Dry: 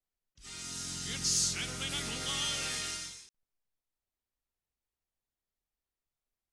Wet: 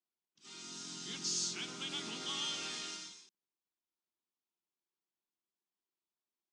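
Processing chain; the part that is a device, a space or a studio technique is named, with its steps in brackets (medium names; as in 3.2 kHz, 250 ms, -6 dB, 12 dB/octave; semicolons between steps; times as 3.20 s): television speaker (cabinet simulation 180–7200 Hz, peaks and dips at 200 Hz +4 dB, 350 Hz +9 dB, 520 Hz -7 dB, 1 kHz +5 dB, 1.9 kHz -5 dB, 3.4 kHz +3 dB); trim -5.5 dB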